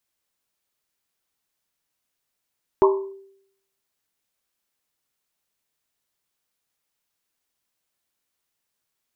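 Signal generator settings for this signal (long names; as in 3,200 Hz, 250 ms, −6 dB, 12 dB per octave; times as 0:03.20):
drum after Risset, pitch 390 Hz, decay 0.72 s, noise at 1,000 Hz, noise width 190 Hz, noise 25%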